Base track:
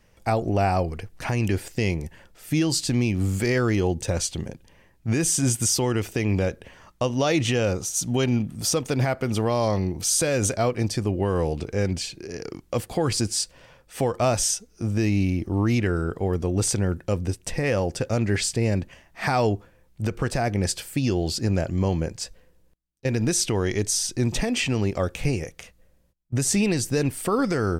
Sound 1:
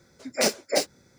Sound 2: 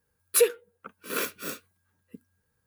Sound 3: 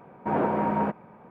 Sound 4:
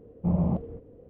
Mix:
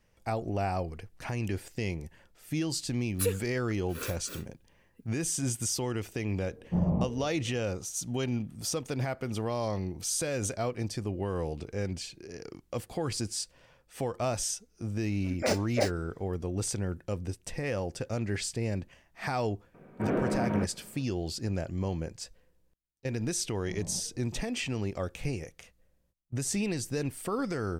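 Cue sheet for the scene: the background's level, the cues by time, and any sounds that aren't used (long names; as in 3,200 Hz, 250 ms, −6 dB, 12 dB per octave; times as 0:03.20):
base track −9 dB
0:02.85: mix in 2 −9.5 dB
0:06.48: mix in 4 −2.5 dB
0:15.05: mix in 1 −3 dB + high-shelf EQ 3,300 Hz −10 dB
0:19.74: mix in 3 −1.5 dB + parametric band 900 Hz −14 dB 0.67 octaves
0:23.43: mix in 4 −17.5 dB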